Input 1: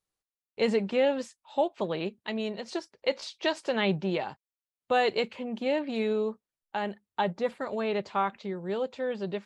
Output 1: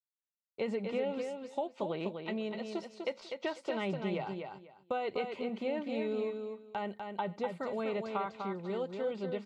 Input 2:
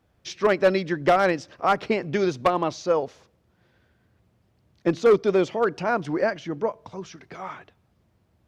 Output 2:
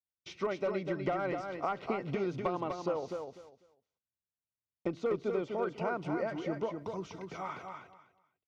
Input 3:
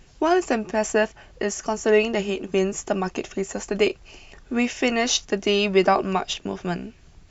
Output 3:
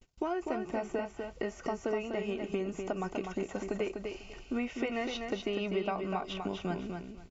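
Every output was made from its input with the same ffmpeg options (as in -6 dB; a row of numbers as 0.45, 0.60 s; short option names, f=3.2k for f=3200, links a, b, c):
-filter_complex "[0:a]acrossover=split=2900[a][b];[b]acompressor=threshold=-50dB:ratio=4:attack=1:release=60[c];[a][c]amix=inputs=2:normalize=0,agate=range=-40dB:threshold=-48dB:ratio=16:detection=peak,acompressor=threshold=-27dB:ratio=6,asuperstop=centerf=1700:order=12:qfactor=7.8,aecho=1:1:248|496|744:0.531|0.106|0.0212,volume=-4dB"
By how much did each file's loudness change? -6.5, -12.5, -12.5 LU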